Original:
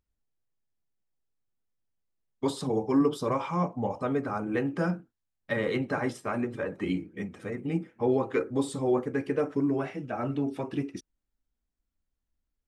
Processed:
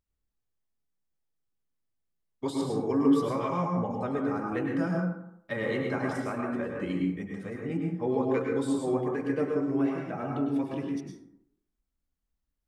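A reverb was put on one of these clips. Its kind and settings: plate-style reverb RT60 0.74 s, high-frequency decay 0.45×, pre-delay 90 ms, DRR 0 dB; gain -4 dB

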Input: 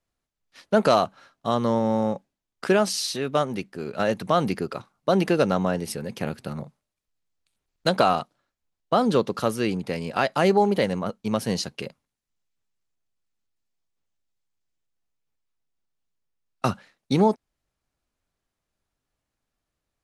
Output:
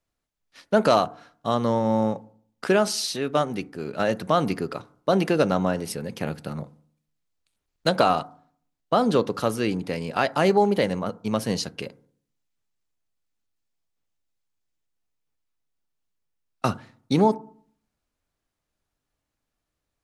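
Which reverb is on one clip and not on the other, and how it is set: FDN reverb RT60 0.54 s, low-frequency decay 1.25×, high-frequency decay 0.3×, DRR 16 dB

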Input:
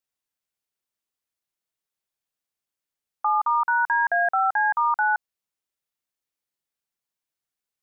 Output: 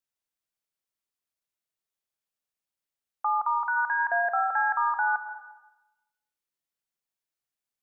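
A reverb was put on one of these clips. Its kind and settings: digital reverb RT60 0.99 s, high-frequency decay 1×, pre-delay 75 ms, DRR 7 dB; gain -4 dB

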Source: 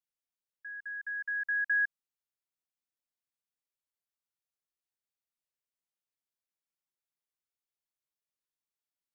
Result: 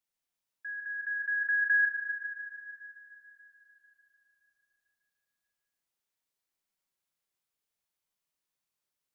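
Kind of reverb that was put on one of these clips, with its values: Schroeder reverb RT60 3.6 s, combs from 33 ms, DRR 1.5 dB; gain +3.5 dB

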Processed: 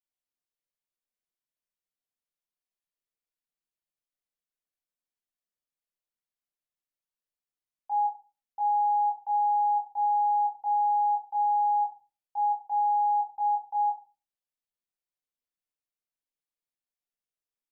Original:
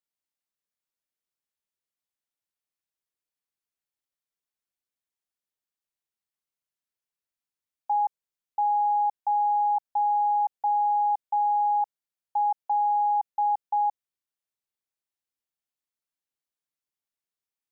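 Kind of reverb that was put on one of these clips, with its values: shoebox room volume 160 m³, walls furnished, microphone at 1.9 m; gain -9.5 dB

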